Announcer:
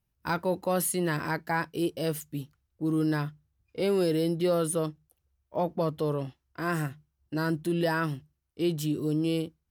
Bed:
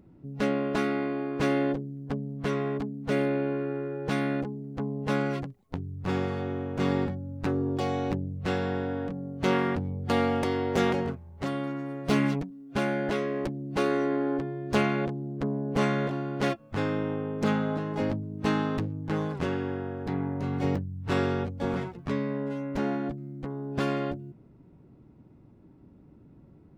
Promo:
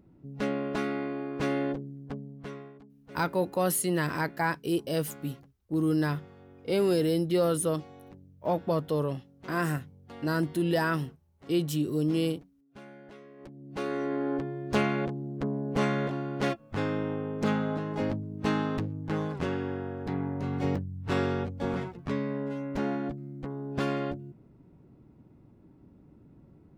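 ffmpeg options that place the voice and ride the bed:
-filter_complex "[0:a]adelay=2900,volume=0.5dB[a];[1:a]volume=16dB,afade=t=out:st=1.88:d=0.86:silence=0.133352,afade=t=in:st=13.37:d=0.98:silence=0.105925[b];[a][b]amix=inputs=2:normalize=0"

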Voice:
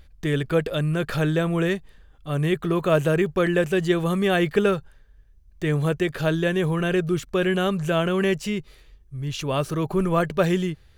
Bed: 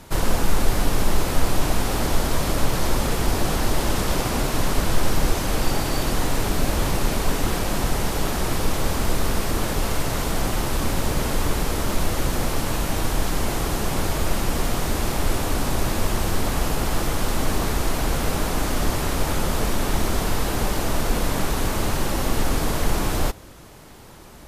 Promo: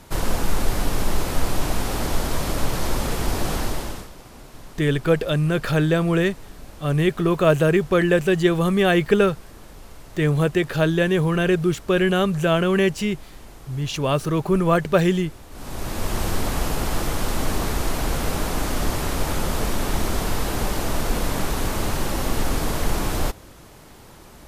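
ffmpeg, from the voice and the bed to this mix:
-filter_complex "[0:a]adelay=4550,volume=3dB[a];[1:a]volume=17.5dB,afade=t=out:st=3.57:d=0.53:silence=0.11885,afade=t=in:st=15.5:d=0.72:silence=0.105925[b];[a][b]amix=inputs=2:normalize=0"

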